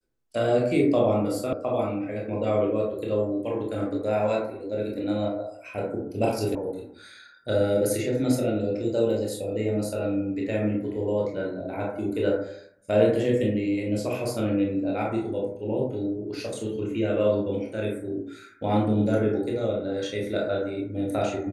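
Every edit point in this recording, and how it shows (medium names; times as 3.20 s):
1.53 s: sound stops dead
6.55 s: sound stops dead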